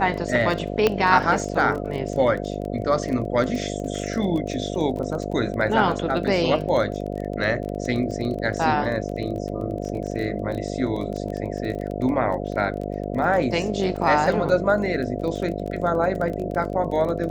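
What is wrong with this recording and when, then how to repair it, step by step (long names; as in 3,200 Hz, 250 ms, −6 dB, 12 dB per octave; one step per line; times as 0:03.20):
mains buzz 50 Hz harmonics 14 −29 dBFS
surface crackle 21 per second −29 dBFS
0:00.87: click −6 dBFS
0:13.96: drop-out 2.2 ms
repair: click removal
hum removal 50 Hz, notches 14
repair the gap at 0:13.96, 2.2 ms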